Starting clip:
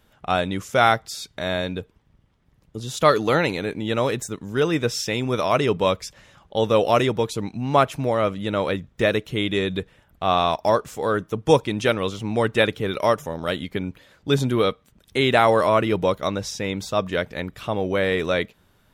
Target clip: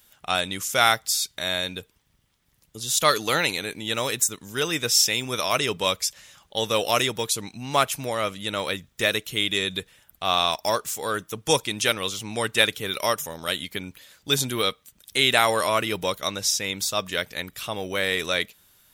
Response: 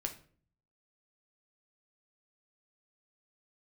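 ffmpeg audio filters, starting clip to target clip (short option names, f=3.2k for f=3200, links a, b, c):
-af "aeval=exprs='0.708*(cos(1*acos(clip(val(0)/0.708,-1,1)))-cos(1*PI/2))+0.00631*(cos(7*acos(clip(val(0)/0.708,-1,1)))-cos(7*PI/2))':c=same,crystalizer=i=10:c=0,volume=-8.5dB"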